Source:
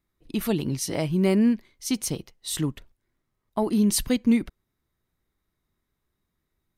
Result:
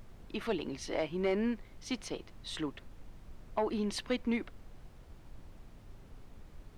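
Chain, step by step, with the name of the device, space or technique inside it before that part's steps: aircraft cabin announcement (BPF 410–3100 Hz; soft clip -19.5 dBFS, distortion -18 dB; brown noise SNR 11 dB); gain -2 dB

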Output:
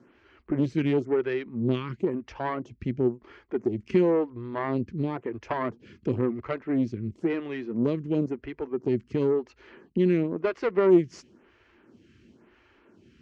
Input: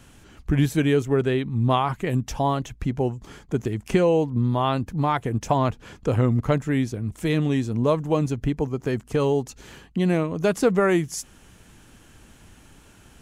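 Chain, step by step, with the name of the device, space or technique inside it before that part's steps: vibe pedal into a guitar amplifier (photocell phaser 0.97 Hz; tube stage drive 18 dB, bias 0.7; speaker cabinet 84–4500 Hz, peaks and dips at 150 Hz -3 dB, 230 Hz +5 dB, 360 Hz +10 dB, 770 Hz -6 dB, 2100 Hz +3 dB, 3600 Hz -7 dB)

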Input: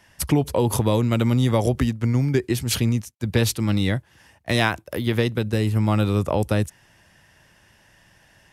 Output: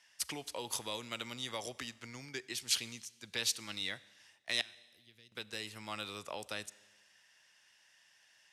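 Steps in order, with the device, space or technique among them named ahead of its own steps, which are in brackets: 4.61–5.32 passive tone stack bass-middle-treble 10-0-1; piezo pickup straight into a mixer (LPF 5200 Hz 12 dB/oct; differentiator); Schroeder reverb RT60 1.3 s, combs from 30 ms, DRR 19.5 dB; gain +1 dB

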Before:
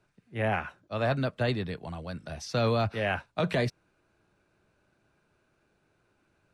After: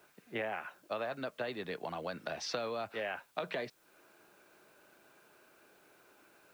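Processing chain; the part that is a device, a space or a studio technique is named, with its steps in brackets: baby monitor (BPF 340–4100 Hz; compressor 10:1, threshold -44 dBFS, peak gain reduction 19.5 dB; white noise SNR 29 dB); gain +9 dB

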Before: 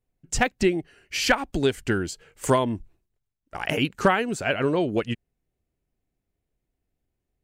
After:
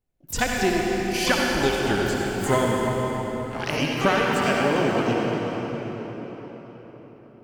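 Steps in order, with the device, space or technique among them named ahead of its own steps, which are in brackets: shimmer-style reverb (harmoniser +12 st -9 dB; reverb RT60 4.9 s, pre-delay 56 ms, DRR -2.5 dB); gain -2.5 dB

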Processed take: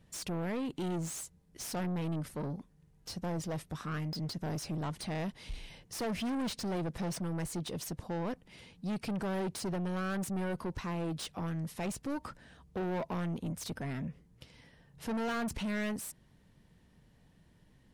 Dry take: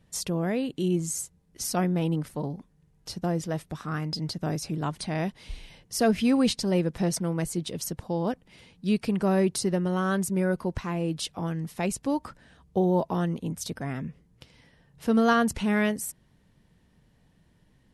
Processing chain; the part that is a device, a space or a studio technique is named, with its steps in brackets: saturation between pre-emphasis and de-emphasis (high shelf 4300 Hz +10 dB; soft clip -31 dBFS, distortion -5 dB; high shelf 4300 Hz -10 dB); gain -1 dB

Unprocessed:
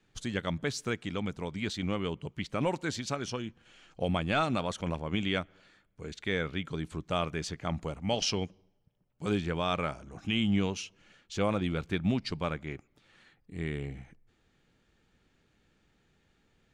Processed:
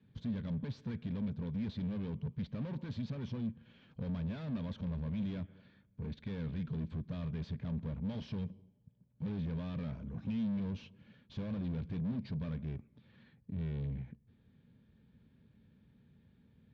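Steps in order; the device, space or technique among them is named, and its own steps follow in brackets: guitar amplifier (tube stage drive 44 dB, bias 0.5; tone controls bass +12 dB, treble -1 dB; speaker cabinet 89–3500 Hz, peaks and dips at 230 Hz +6 dB, 330 Hz -8 dB, 750 Hz -9 dB, 1300 Hz -10 dB, 2000 Hz -7 dB, 2800 Hz -8 dB); gain +1 dB

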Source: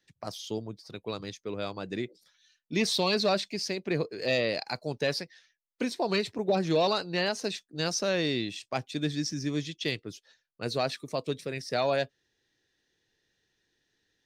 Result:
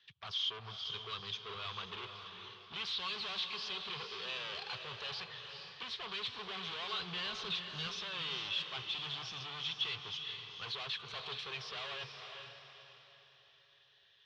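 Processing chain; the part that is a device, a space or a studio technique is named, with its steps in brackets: scooped metal amplifier (tube stage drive 44 dB, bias 0.25; speaker cabinet 94–3800 Hz, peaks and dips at 400 Hz +9 dB, 600 Hz -6 dB, 1100 Hz +8 dB, 1900 Hz -4 dB, 3200 Hz +9 dB; passive tone stack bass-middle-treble 10-0-10); 6.99–7.87 low shelf 240 Hz +12 dB; diffused feedback echo 0.457 s, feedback 41%, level -6 dB; gain +11 dB

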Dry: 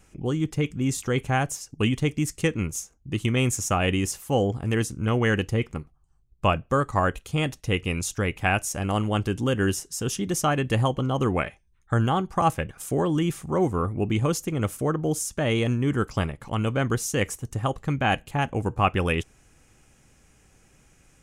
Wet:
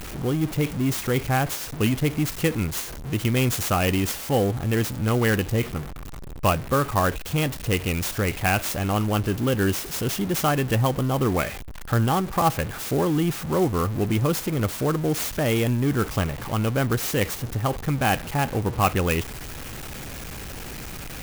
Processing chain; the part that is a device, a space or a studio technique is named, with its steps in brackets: early CD player with a faulty converter (zero-crossing step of -29.5 dBFS; clock jitter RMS 0.036 ms)

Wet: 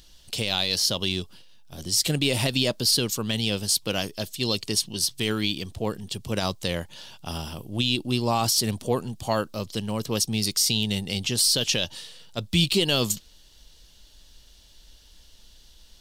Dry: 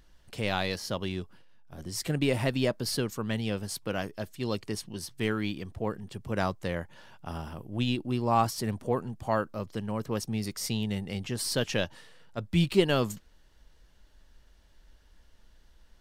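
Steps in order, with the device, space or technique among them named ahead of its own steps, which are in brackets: over-bright horn tweeter (resonant high shelf 2500 Hz +11 dB, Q 1.5; limiter -15 dBFS, peak gain reduction 8 dB); gain +4 dB

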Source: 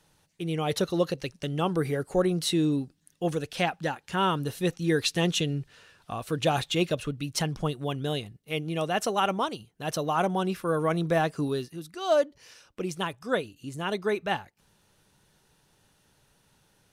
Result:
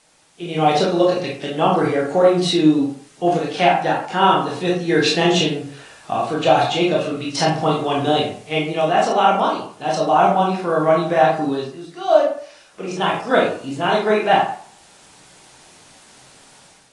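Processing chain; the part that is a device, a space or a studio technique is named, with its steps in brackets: filmed off a television (BPF 180–6200 Hz; bell 750 Hz +8 dB 0.45 oct; reverb RT60 0.50 s, pre-delay 19 ms, DRR -3 dB; white noise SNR 32 dB; AGC gain up to 9 dB; gain -1 dB; AAC 32 kbps 22050 Hz)

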